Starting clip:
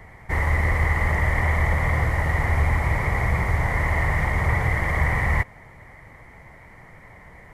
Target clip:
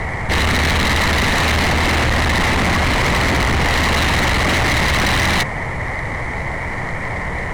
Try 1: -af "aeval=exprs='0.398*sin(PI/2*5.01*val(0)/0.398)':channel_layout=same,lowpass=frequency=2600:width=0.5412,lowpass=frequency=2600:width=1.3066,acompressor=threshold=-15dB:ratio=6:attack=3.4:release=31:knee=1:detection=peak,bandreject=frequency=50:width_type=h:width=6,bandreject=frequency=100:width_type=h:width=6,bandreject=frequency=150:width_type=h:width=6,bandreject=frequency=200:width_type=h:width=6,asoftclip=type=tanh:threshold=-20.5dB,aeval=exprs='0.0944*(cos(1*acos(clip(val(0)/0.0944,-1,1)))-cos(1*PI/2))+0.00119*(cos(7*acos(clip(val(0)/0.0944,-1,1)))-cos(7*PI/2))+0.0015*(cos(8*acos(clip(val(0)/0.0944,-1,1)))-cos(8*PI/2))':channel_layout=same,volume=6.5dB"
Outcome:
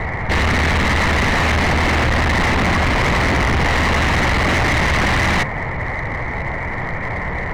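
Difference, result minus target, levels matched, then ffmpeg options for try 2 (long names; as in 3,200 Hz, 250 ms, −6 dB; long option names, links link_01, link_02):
8,000 Hz band −4.0 dB
-af "aeval=exprs='0.398*sin(PI/2*5.01*val(0)/0.398)':channel_layout=same,lowpass=frequency=9700:width=0.5412,lowpass=frequency=9700:width=1.3066,acompressor=threshold=-15dB:ratio=6:attack=3.4:release=31:knee=1:detection=peak,bandreject=frequency=50:width_type=h:width=6,bandreject=frequency=100:width_type=h:width=6,bandreject=frequency=150:width_type=h:width=6,bandreject=frequency=200:width_type=h:width=6,asoftclip=type=tanh:threshold=-20.5dB,aeval=exprs='0.0944*(cos(1*acos(clip(val(0)/0.0944,-1,1)))-cos(1*PI/2))+0.00119*(cos(7*acos(clip(val(0)/0.0944,-1,1)))-cos(7*PI/2))+0.0015*(cos(8*acos(clip(val(0)/0.0944,-1,1)))-cos(8*PI/2))':channel_layout=same,volume=6.5dB"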